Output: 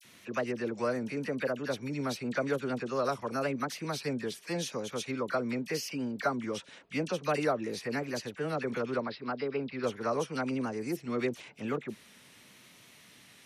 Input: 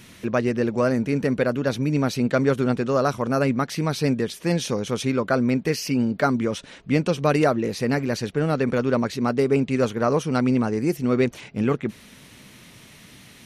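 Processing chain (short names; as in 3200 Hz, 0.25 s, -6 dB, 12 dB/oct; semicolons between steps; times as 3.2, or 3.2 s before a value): HPF 72 Hz; low shelf 280 Hz -9.5 dB; dispersion lows, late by 43 ms, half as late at 1400 Hz; vibrato 0.88 Hz 50 cents; 9–9.84 rippled Chebyshev low-pass 5200 Hz, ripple 3 dB; gain -7.5 dB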